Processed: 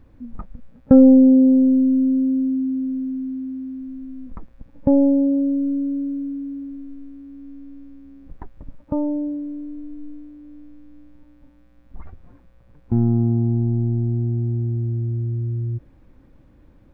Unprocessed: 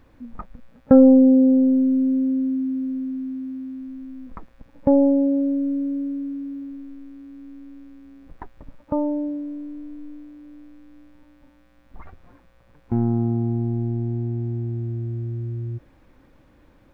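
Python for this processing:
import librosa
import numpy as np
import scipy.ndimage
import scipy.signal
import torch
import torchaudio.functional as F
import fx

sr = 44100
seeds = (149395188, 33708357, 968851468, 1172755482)

y = fx.low_shelf(x, sr, hz=400.0, db=11.5)
y = F.gain(torch.from_numpy(y), -6.0).numpy()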